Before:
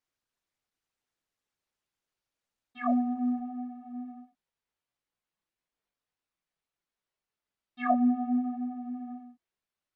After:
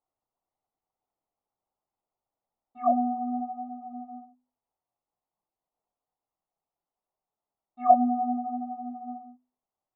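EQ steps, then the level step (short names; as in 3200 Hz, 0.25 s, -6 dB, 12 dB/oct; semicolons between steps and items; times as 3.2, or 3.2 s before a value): polynomial smoothing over 65 samples; bell 770 Hz +10.5 dB 0.68 oct; notches 50/100/150/200/250 Hz; 0.0 dB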